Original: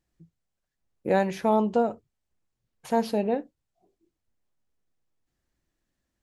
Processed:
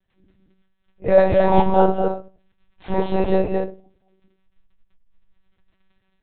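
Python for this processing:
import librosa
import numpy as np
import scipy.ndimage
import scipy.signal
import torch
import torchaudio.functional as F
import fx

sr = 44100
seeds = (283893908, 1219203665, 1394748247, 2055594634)

y = fx.phase_scramble(x, sr, seeds[0], window_ms=100)
y = fx.high_shelf(y, sr, hz=2500.0, db=6.5)
y = fx.dmg_crackle(y, sr, seeds[1], per_s=16.0, level_db=-49.0)
y = y + 10.0 ** (-3.5 / 20.0) * np.pad(y, (int(218 * sr / 1000.0), 0))[:len(y)]
y = fx.room_shoebox(y, sr, seeds[2], volume_m3=180.0, walls='furnished', distance_m=2.3)
y = fx.lpc_monotone(y, sr, seeds[3], pitch_hz=190.0, order=10)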